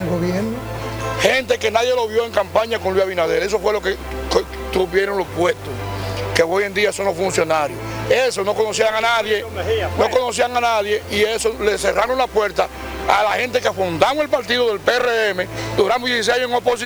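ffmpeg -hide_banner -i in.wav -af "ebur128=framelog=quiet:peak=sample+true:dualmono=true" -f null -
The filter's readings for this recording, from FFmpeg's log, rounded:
Integrated loudness:
  I:         -15.5 LUFS
  Threshold: -25.5 LUFS
Loudness range:
  LRA:         1.8 LU
  Threshold: -35.5 LUFS
  LRA low:   -16.6 LUFS
  LRA high:  -14.8 LUFS
Sample peak:
  Peak:       -1.2 dBFS
True peak:
  Peak:       -1.2 dBFS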